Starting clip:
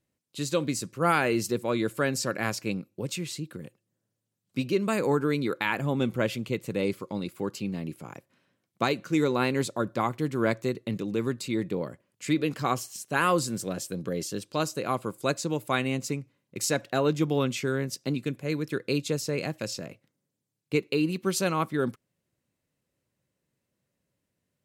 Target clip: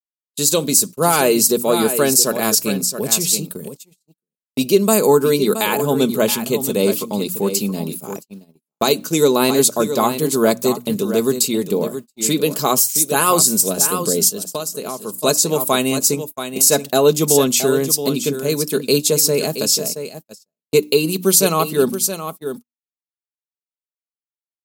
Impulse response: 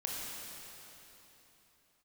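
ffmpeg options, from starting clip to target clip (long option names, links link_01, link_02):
-filter_complex "[0:a]bandreject=frequency=60:width_type=h:width=6,bandreject=frequency=120:width_type=h:width=6,bandreject=frequency=180:width_type=h:width=6,bandreject=frequency=240:width_type=h:width=6,bandreject=frequency=300:width_type=h:width=6,aecho=1:1:672:0.316,agate=range=-50dB:threshold=-40dB:ratio=16:detection=peak,aemphasis=mode=production:type=bsi,asplit=3[link_01][link_02][link_03];[link_01]afade=type=out:start_time=14.28:duration=0.02[link_04];[link_02]acompressor=threshold=-34dB:ratio=12,afade=type=in:start_time=14.28:duration=0.02,afade=type=out:start_time=15.17:duration=0.02[link_05];[link_03]afade=type=in:start_time=15.17:duration=0.02[link_06];[link_04][link_05][link_06]amix=inputs=3:normalize=0,equalizer=frequency=1900:width_type=o:width=1.3:gain=-14,aecho=1:1:4.7:0.45,alimiter=level_in=15dB:limit=-1dB:release=50:level=0:latency=1,volume=-1dB"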